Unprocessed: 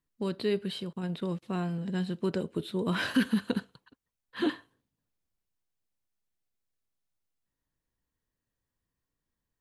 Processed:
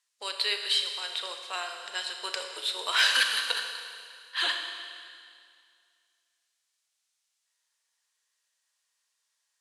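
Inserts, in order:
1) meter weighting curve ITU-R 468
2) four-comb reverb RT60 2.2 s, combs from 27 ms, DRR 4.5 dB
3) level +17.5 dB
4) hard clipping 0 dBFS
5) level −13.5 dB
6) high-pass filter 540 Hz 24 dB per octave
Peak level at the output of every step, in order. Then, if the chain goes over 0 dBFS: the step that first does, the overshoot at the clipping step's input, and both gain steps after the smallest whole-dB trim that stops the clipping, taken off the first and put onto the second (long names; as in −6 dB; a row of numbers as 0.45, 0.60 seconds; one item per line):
−13.0, −13.0, +4.5, 0.0, −13.5, −10.5 dBFS
step 3, 4.5 dB
step 3 +12.5 dB, step 5 −8.5 dB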